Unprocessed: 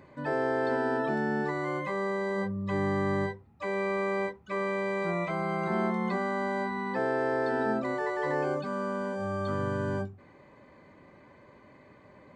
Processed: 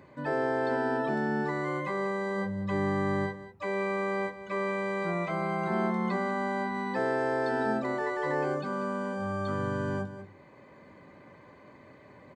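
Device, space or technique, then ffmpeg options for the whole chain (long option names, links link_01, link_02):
ducked delay: -filter_complex "[0:a]highpass=62,asplit=3[link_01][link_02][link_03];[link_02]adelay=190,volume=-2dB[link_04];[link_03]apad=whole_len=553161[link_05];[link_04][link_05]sidechaincompress=threshold=-40dB:ratio=6:attack=16:release=814[link_06];[link_01][link_06]amix=inputs=2:normalize=0,asettb=1/sr,asplit=3[link_07][link_08][link_09];[link_07]atrim=end=6.744[link_10];[link_08]atrim=start=6.74:end=7.83,asetpts=PTS-STARTPTS,afade=type=in:duration=0.004:curve=qsin,afade=type=out:start_time=1.086:duration=0.004:curve=qsin,highshelf=frequency=5000:gain=6.5[link_11];[link_09]atrim=start=7.826[link_12];[link_10][link_11]acrossfade=duration=0.004:curve1=hsin:curve2=qsin[link_13];[link_13][link_12]acrossfade=duration=0.004:curve1=qsin:curve2=hsin"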